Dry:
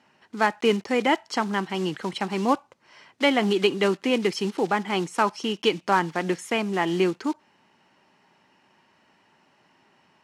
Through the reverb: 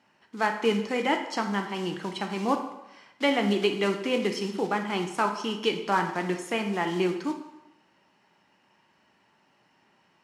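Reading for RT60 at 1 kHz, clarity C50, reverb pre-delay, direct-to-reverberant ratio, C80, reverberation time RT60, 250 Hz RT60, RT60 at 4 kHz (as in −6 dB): 0.95 s, 8.0 dB, 7 ms, 4.5 dB, 10.5 dB, 0.90 s, 0.85 s, 0.80 s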